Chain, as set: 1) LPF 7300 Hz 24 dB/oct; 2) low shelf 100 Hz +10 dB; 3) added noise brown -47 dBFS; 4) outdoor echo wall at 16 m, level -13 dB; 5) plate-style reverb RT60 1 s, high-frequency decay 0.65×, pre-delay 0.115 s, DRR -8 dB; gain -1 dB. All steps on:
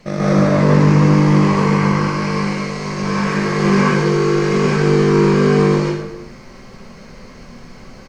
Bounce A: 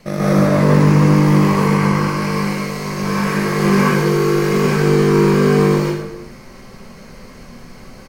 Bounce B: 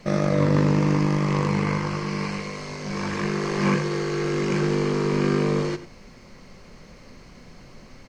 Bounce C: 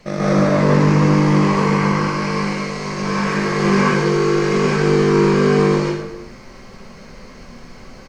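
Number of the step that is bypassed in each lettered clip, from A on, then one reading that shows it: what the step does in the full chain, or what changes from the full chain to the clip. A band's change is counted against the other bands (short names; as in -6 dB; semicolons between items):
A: 1, 8 kHz band +2.5 dB; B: 5, 8 kHz band +2.0 dB; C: 2, 125 Hz band -3.0 dB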